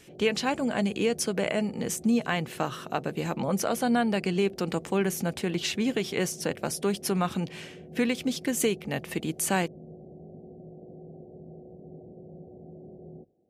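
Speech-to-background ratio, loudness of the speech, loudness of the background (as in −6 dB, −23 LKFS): 18.5 dB, −28.5 LKFS, −47.0 LKFS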